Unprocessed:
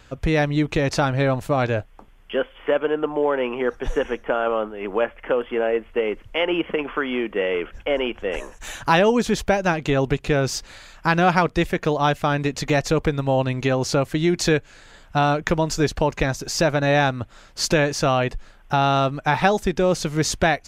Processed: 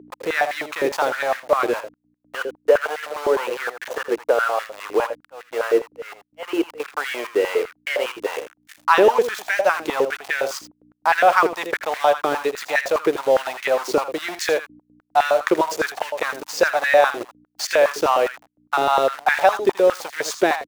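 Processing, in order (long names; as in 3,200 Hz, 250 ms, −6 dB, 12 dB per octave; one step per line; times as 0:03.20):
centre clipping without the shift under −26 dBFS
0:05.00–0:06.80: volume swells 295 ms
downward expander −38 dBFS
mains hum 60 Hz, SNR 11 dB
on a send: single-tap delay 81 ms −11 dB
on the sum: high-pass on a step sequencer 9.8 Hz 380–1,800 Hz
level −3 dB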